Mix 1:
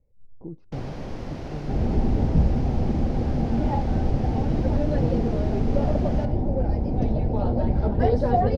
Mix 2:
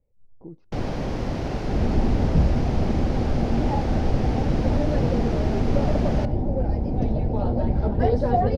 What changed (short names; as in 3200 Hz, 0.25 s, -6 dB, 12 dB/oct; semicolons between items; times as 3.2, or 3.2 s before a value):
speech: add low shelf 320 Hz -5.5 dB; first sound +7.0 dB